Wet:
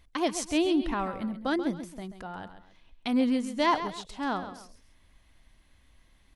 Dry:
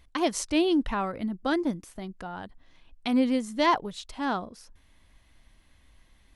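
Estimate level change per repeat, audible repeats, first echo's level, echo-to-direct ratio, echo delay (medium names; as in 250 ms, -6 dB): -9.0 dB, 2, -11.0 dB, -10.5 dB, 134 ms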